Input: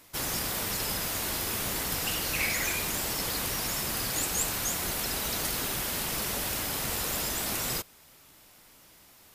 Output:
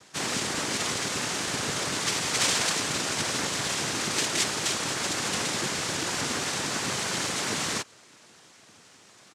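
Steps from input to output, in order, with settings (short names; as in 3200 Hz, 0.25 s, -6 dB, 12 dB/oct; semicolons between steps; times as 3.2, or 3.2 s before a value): comb 4.4 ms; noise vocoder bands 3; gain +3.5 dB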